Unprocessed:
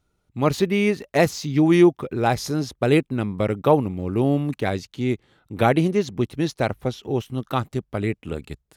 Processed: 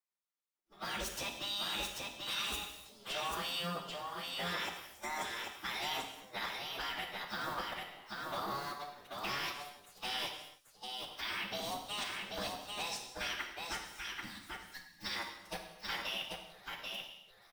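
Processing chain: companding laws mixed up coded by A; spectral gate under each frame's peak -15 dB weak; formant shift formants +6 st; level held to a coarse grid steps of 20 dB; time-frequency box 6.98–7.48 s, 330–1600 Hz -20 dB; plain phase-vocoder stretch 2×; delay 788 ms -3.5 dB; gated-style reverb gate 340 ms falling, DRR 3.5 dB; trim +1 dB

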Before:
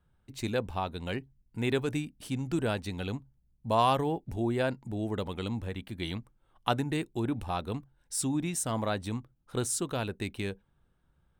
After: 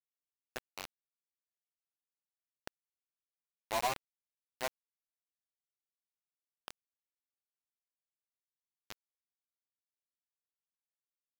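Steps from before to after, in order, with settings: chorus voices 6, 0.18 Hz, delay 12 ms, depth 4.3 ms; band-pass sweep 710 Hz -> 2 kHz, 3.94–6.69 s; bit crusher 5-bit; trim -3 dB

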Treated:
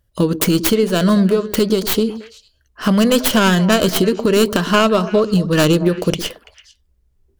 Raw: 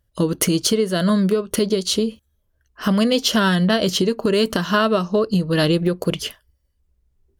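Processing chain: tracing distortion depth 0.4 ms; repeats whose band climbs or falls 112 ms, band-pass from 280 Hz, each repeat 1.4 oct, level -9 dB; trim +3.5 dB

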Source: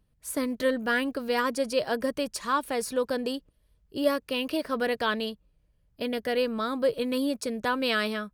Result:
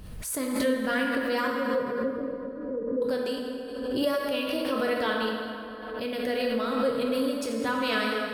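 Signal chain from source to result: 1.47–3.02 s: Chebyshev low-pass 540 Hz, order 6; plate-style reverb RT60 2.9 s, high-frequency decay 0.6×, DRR -1.5 dB; swell ahead of each attack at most 39 dB/s; trim -4 dB

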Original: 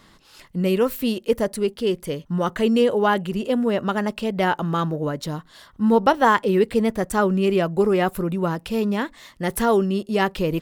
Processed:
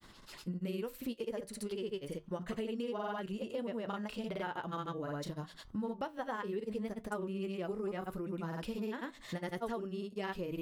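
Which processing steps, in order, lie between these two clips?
granulator, pitch spread up and down by 0 st; compression 6:1, threshold -34 dBFS, peak gain reduction 20.5 dB; flange 0.7 Hz, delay 7.5 ms, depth 2.6 ms, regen -74%; trim +1.5 dB

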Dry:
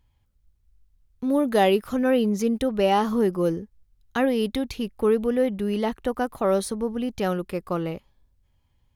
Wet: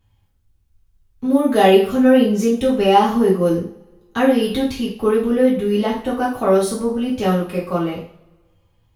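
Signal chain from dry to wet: two-slope reverb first 0.44 s, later 1.7 s, from -26 dB, DRR -7.5 dB; trim -2 dB

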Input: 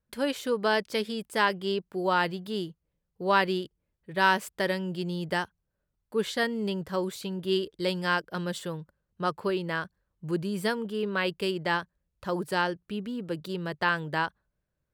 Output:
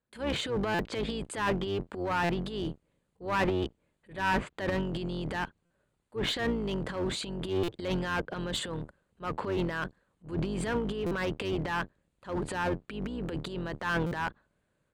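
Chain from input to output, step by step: octave divider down 2 oct, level +4 dB; high-pass 260 Hz 6 dB/octave; low-pass that closes with the level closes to 2 kHz, closed at -23 dBFS; steep low-pass 9.8 kHz; peaking EQ 5.5 kHz -13.5 dB 0.36 oct; transient shaper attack -9 dB, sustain +11 dB; one-sided clip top -28.5 dBFS; buffer glitch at 0.74/2.24/5.65/7.63/11.06/14.06 s, samples 256, times 8

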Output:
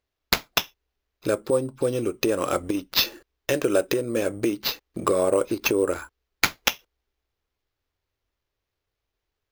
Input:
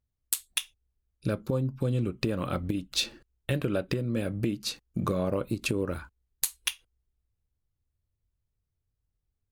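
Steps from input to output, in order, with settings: resonant low shelf 260 Hz -12 dB, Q 1.5; sample-and-hold 5×; trim +7.5 dB

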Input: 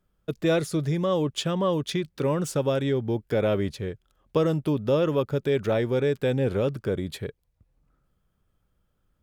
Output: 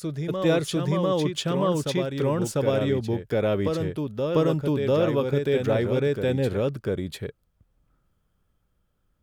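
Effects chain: reverse echo 697 ms -4.5 dB

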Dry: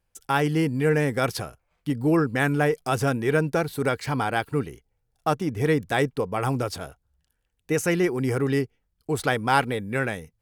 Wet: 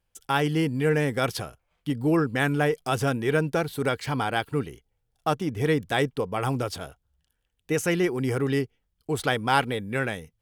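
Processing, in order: peaking EQ 3.2 kHz +5.5 dB 0.38 oct; trim -1.5 dB

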